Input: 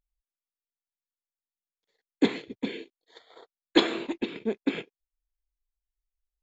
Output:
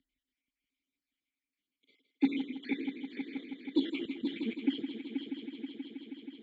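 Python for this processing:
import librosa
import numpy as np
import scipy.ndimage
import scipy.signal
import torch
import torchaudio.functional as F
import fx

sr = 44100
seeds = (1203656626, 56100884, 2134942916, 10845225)

p1 = fx.spec_dropout(x, sr, seeds[0], share_pct=55)
p2 = fx.over_compress(p1, sr, threshold_db=-38.0, ratio=-1.0)
p3 = p1 + (p2 * librosa.db_to_amplitude(-2.0))
p4 = fx.vowel_filter(p3, sr, vowel='i')
p5 = 10.0 ** (-17.5 / 20.0) * np.tanh(p4 / 10.0 ** (-17.5 / 20.0))
p6 = fx.ellip_bandstop(p5, sr, low_hz=220.0, high_hz=1500.0, order=3, stop_db=40, at=(4.05, 4.45))
p7 = p6 + fx.echo_heads(p6, sr, ms=160, heads='first and third', feedback_pct=68, wet_db=-11, dry=0)
p8 = fx.band_squash(p7, sr, depth_pct=40)
y = p8 * librosa.db_to_amplitude(4.0)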